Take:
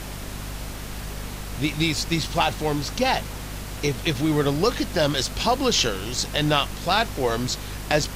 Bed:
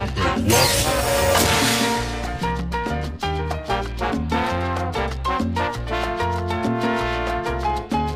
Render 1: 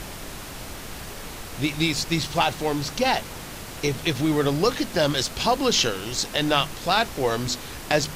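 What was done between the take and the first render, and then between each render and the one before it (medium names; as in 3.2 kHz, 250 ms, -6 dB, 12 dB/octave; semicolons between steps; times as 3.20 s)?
de-hum 50 Hz, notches 5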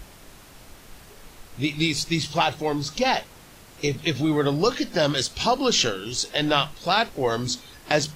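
noise print and reduce 11 dB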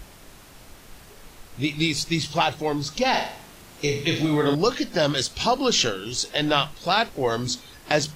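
3.09–4.55 s: flutter echo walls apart 6.8 m, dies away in 0.52 s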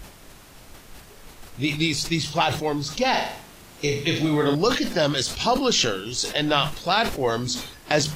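decay stretcher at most 88 dB/s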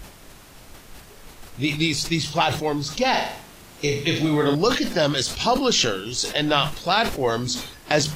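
trim +1 dB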